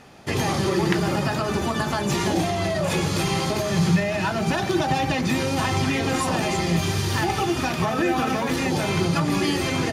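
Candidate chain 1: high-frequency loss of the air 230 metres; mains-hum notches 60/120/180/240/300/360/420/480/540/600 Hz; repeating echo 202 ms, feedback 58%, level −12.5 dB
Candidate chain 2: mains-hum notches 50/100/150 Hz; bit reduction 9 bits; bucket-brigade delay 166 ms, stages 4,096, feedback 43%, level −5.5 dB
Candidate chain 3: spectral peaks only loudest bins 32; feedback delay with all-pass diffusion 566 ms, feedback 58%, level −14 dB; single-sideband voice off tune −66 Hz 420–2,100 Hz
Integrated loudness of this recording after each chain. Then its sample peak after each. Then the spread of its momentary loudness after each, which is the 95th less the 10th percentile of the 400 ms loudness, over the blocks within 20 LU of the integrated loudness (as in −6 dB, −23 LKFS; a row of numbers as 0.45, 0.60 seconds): −24.0, −22.0, −28.5 LKFS; −10.0, −8.0, −13.0 dBFS; 2, 2, 4 LU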